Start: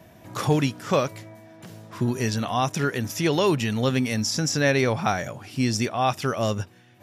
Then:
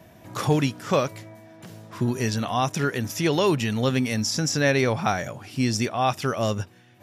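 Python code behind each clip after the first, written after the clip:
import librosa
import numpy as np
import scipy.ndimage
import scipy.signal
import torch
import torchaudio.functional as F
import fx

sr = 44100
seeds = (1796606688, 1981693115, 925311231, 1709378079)

y = x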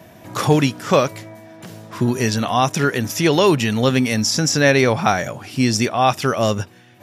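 y = fx.low_shelf(x, sr, hz=71.0, db=-9.0)
y = y * librosa.db_to_amplitude(7.0)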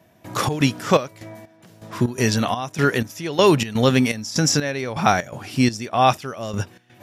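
y = fx.step_gate(x, sr, bpm=124, pattern='..xx.xxx..xx.', floor_db=-12.0, edge_ms=4.5)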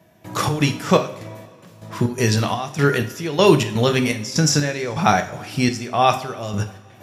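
y = fx.rev_double_slope(x, sr, seeds[0], early_s=0.43, late_s=2.3, knee_db=-18, drr_db=6.5)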